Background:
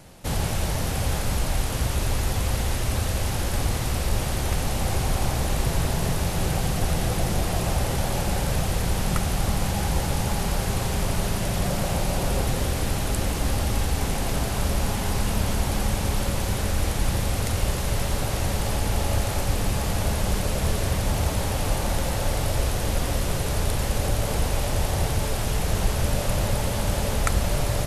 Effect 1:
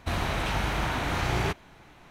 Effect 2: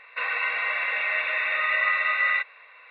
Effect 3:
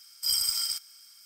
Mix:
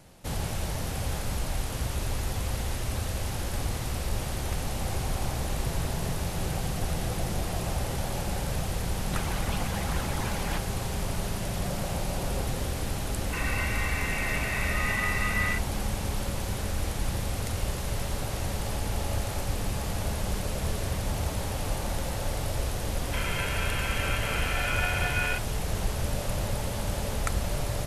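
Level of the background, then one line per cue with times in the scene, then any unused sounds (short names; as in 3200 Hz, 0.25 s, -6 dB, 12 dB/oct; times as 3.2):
background -6 dB
9.06 add 1 -3 dB + median-filter separation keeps percussive
13.16 add 2 -6.5 dB
22.96 add 2 -4 dB + ring modulator 520 Hz
not used: 3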